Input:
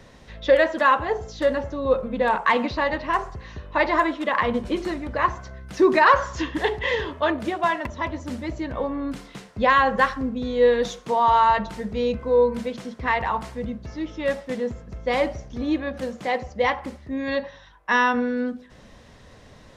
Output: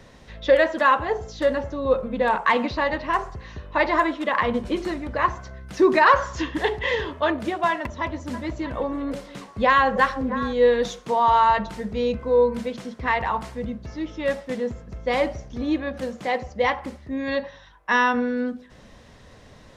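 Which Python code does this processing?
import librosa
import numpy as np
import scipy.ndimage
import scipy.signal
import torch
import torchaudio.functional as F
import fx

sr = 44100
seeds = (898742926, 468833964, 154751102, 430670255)

y = fx.echo_stepped(x, sr, ms=322, hz=490.0, octaves=1.4, feedback_pct=70, wet_db=-8.5, at=(8.33, 10.52), fade=0.02)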